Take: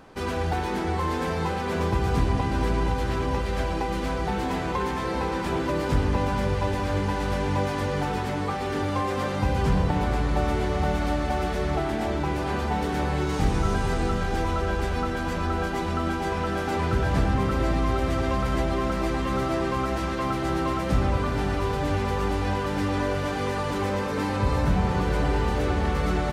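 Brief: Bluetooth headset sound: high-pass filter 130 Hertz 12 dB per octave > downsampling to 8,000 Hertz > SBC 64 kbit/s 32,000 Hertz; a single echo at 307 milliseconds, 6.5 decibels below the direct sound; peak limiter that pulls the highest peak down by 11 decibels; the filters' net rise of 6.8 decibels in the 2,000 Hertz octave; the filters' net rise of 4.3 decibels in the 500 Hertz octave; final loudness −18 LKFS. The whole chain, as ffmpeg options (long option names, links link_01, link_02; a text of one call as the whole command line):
ffmpeg -i in.wav -af "equalizer=frequency=500:width_type=o:gain=5,equalizer=frequency=2000:width_type=o:gain=8.5,alimiter=limit=-19.5dB:level=0:latency=1,highpass=130,aecho=1:1:307:0.473,aresample=8000,aresample=44100,volume=10dB" -ar 32000 -c:a sbc -b:a 64k out.sbc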